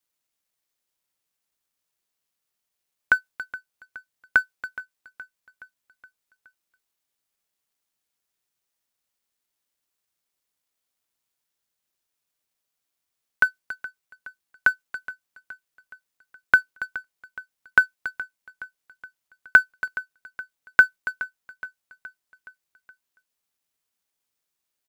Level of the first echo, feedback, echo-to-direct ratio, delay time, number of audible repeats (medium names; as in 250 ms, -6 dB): -17.0 dB, 55%, -15.5 dB, 420 ms, 4